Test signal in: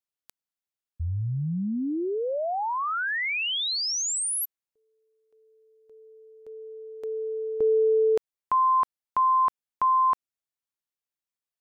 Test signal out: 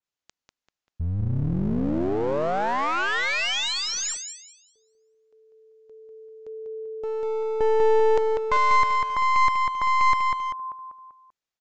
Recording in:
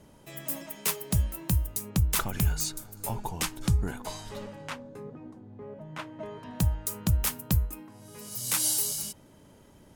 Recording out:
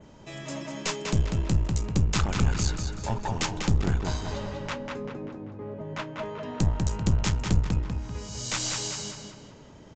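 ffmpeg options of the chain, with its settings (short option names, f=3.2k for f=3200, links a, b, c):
-filter_complex "[0:a]adynamicequalizer=threshold=0.00447:dfrequency=5300:dqfactor=1.3:tfrequency=5300:tqfactor=1.3:attack=5:release=100:ratio=0.375:range=2.5:mode=cutabove:tftype=bell,asplit=2[a][b];[b]adelay=195,lowpass=f=4k:p=1,volume=-4dB,asplit=2[c][d];[d]adelay=195,lowpass=f=4k:p=1,volume=0.48,asplit=2[e][f];[f]adelay=195,lowpass=f=4k:p=1,volume=0.48,asplit=2[g][h];[h]adelay=195,lowpass=f=4k:p=1,volume=0.48,asplit=2[i][j];[j]adelay=195,lowpass=f=4k:p=1,volume=0.48,asplit=2[k][l];[l]adelay=195,lowpass=f=4k:p=1,volume=0.48[m];[a][c][e][g][i][k][m]amix=inputs=7:normalize=0,aresample=16000,aeval=exprs='clip(val(0),-1,0.0211)':c=same,aresample=44100,volume=4.5dB"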